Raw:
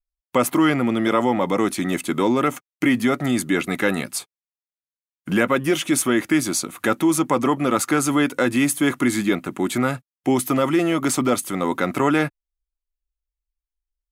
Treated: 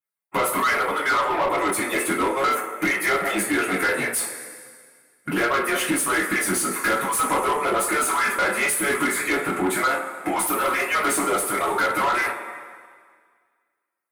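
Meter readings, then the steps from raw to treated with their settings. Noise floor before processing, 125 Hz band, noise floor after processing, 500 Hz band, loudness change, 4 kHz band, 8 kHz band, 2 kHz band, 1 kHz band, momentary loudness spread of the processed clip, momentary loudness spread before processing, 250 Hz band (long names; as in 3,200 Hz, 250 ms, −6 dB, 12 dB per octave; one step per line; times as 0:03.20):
below −85 dBFS, −11.0 dB, −75 dBFS, −3.0 dB, −1.0 dB, −0.5 dB, +1.5 dB, +4.0 dB, +3.0 dB, 6 LU, 5 LU, −9.0 dB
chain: harmonic-percussive split with one part muted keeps percussive
flat-topped bell 4,300 Hz −13 dB
downward compressor 3 to 1, threshold −28 dBFS, peak gain reduction 10.5 dB
coupled-rooms reverb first 0.29 s, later 1.8 s, from −17 dB, DRR −7.5 dB
mid-hump overdrive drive 18 dB, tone 7,200 Hz, clips at −9.5 dBFS
level −4 dB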